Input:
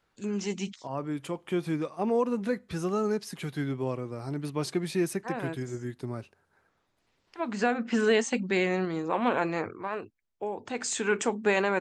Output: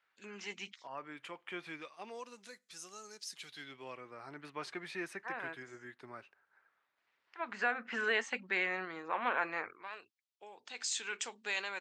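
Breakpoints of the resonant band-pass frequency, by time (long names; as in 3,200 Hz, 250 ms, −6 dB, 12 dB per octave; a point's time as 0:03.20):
resonant band-pass, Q 1.3
0:01.60 2,000 Hz
0:02.52 6,800 Hz
0:03.14 6,800 Hz
0:04.15 1,700 Hz
0:09.58 1,700 Hz
0:09.99 4,200 Hz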